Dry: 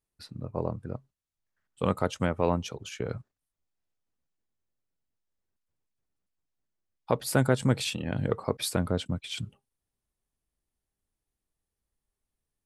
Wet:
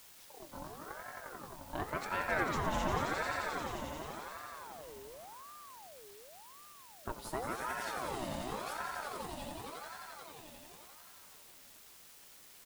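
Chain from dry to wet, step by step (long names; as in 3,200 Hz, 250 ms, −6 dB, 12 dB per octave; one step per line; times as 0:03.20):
source passing by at 0:03.73, 16 m/s, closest 4 metres
comb filter 6.5 ms, depth 84%
on a send: echo that builds up and dies away 88 ms, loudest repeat 5, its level −6 dB
on the sum: four-comb reverb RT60 2 s, combs from 28 ms, DRR 10 dB
in parallel at −11 dB: bit-depth reduction 8 bits, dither triangular
on the sum: ring modulator whose carrier an LFO sweeps 800 Hz, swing 50%, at 0.9 Hz
level +5 dB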